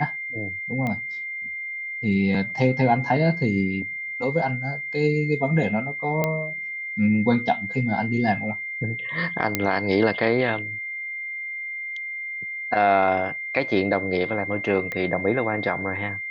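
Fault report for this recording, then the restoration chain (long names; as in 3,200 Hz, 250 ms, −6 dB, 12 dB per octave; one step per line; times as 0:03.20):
whistle 2,100 Hz −29 dBFS
0:00.87: click −16 dBFS
0:06.24: click −9 dBFS
0:09.55: click −5 dBFS
0:14.92: click −16 dBFS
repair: click removal
notch filter 2,100 Hz, Q 30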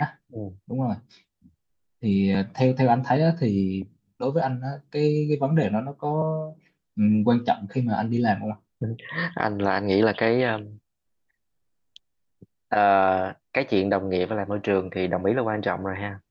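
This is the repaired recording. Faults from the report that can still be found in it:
none of them is left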